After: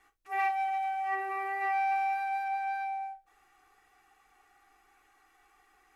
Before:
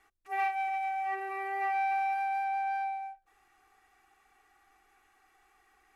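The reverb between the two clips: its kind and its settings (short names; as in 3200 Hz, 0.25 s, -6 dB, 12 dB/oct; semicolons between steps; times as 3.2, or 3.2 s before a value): non-linear reverb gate 90 ms falling, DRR 5 dB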